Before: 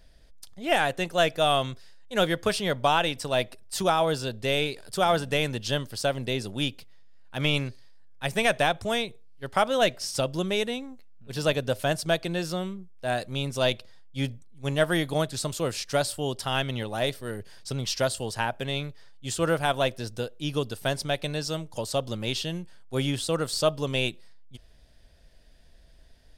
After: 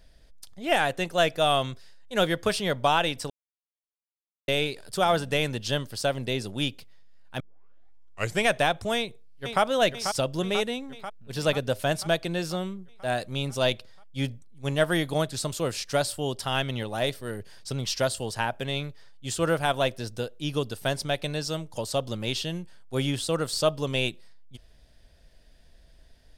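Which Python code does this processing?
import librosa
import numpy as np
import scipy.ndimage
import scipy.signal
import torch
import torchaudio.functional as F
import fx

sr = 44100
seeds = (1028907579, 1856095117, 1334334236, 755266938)

y = fx.echo_throw(x, sr, start_s=8.96, length_s=0.66, ms=490, feedback_pct=65, wet_db=-7.0)
y = fx.edit(y, sr, fx.silence(start_s=3.3, length_s=1.18),
    fx.tape_start(start_s=7.4, length_s=1.06), tone=tone)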